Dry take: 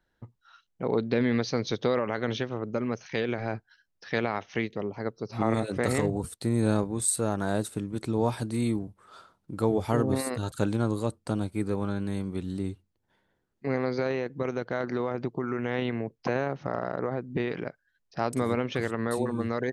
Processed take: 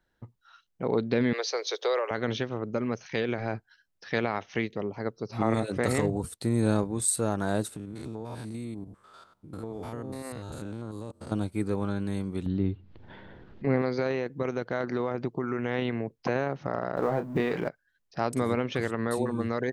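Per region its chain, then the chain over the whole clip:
1.33–2.11 steep high-pass 390 Hz 48 dB/oct + high shelf 5600 Hz +8.5 dB
7.76–11.32 stepped spectrum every 0.1 s + compressor 4:1, threshold -34 dBFS
12.46–13.82 low shelf 380 Hz +6 dB + upward compressor, threshold -28 dBFS + LPF 3800 Hz 24 dB/oct
16.96–17.69 G.711 law mismatch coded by mu + bell 790 Hz +5 dB 1.3 oct + doubler 29 ms -9 dB
whole clip: dry

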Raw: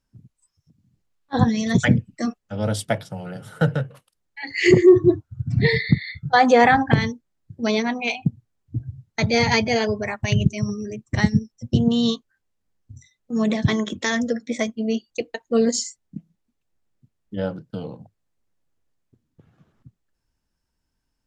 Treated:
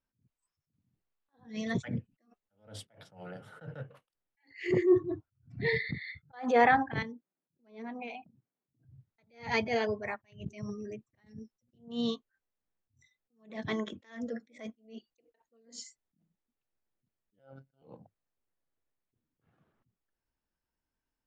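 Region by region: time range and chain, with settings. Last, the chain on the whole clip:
7.02–8.85 HPF 170 Hz 24 dB/oct + tilt -2.5 dB/oct + compressor 10:1, threshold -27 dBFS
17.39–17.82 comb 1.4 ms, depth 50% + robotiser 135 Hz
whole clip: tone controls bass -7 dB, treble -12 dB; attack slew limiter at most 160 dB/s; gain -7.5 dB

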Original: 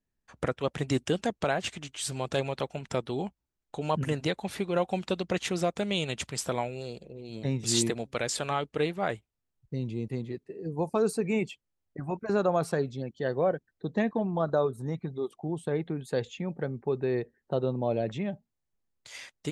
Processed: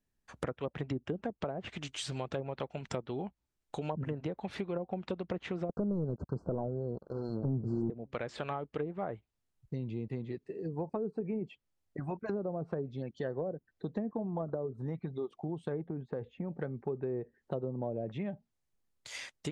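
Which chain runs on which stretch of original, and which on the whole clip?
5.69–7.9 sample leveller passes 3 + brick-wall FIR band-stop 1600–4100 Hz + expander -31 dBFS
15.81–16.53 LPF 1100 Hz + compressor 3:1, threshold -29 dBFS
whole clip: treble ducked by the level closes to 470 Hz, closed at -22.5 dBFS; compressor 2.5:1, threshold -37 dBFS; gain +1 dB

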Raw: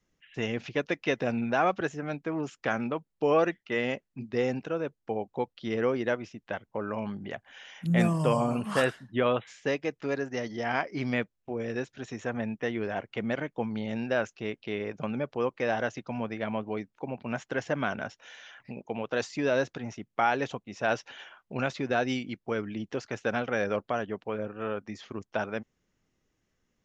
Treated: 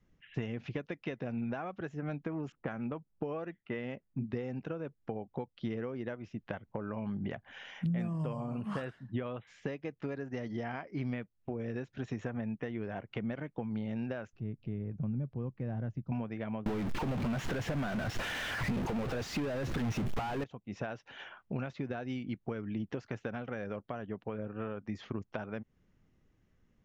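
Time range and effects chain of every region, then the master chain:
2.52–4.24 air absorption 51 m + low-pass opened by the level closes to 830 Hz, open at -23 dBFS
14.33–16.12 EQ curve 130 Hz 0 dB, 510 Hz -17 dB, 3900 Hz -26 dB + upward compressor, threshold -46 dBFS
16.66–20.44 zero-crossing step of -28 dBFS + sample leveller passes 3
whole clip: high shelf 5300 Hz -11.5 dB; compressor 12:1, threshold -38 dBFS; tone controls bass +8 dB, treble -3 dB; gain +1.5 dB

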